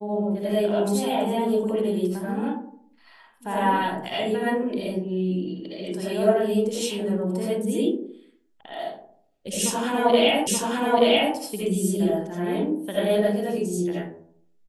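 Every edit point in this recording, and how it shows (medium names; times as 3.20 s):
10.47 s: repeat of the last 0.88 s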